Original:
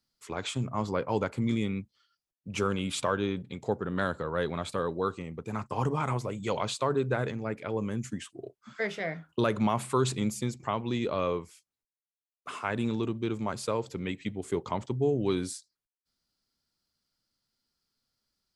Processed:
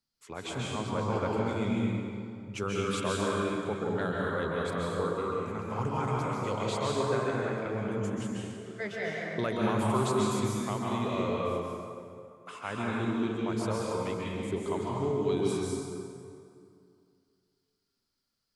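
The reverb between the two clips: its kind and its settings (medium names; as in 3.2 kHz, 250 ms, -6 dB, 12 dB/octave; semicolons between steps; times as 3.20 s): plate-style reverb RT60 2.4 s, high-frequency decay 0.65×, pre-delay 120 ms, DRR -4 dB; trim -5.5 dB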